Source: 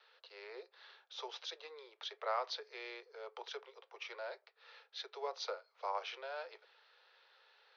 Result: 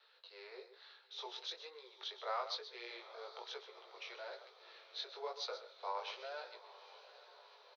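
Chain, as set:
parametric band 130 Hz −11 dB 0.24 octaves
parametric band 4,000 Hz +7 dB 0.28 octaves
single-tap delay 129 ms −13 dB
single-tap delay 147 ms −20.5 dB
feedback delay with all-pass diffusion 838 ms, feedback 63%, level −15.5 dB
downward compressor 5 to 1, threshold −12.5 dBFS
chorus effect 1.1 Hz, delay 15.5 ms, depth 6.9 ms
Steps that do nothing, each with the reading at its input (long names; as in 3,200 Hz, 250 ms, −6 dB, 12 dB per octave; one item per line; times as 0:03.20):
parametric band 130 Hz: nothing at its input below 320 Hz
downward compressor, threshold −12.5 dBFS: peak of its input −24.0 dBFS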